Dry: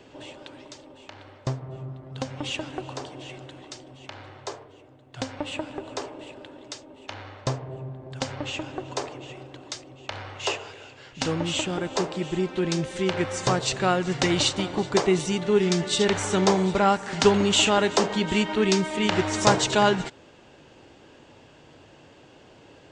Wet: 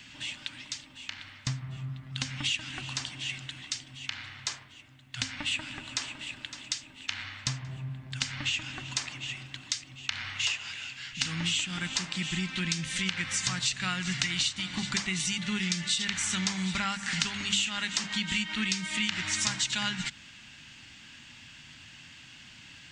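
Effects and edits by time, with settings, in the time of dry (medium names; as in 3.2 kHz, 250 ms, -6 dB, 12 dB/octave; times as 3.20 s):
5.45–6.47 s: echo throw 560 ms, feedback 40%, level -14.5 dB
whole clip: FFT filter 230 Hz 0 dB, 430 Hz -25 dB, 2 kHz +9 dB; compression 6:1, threshold -27 dBFS; hum notches 50/100/150/200 Hz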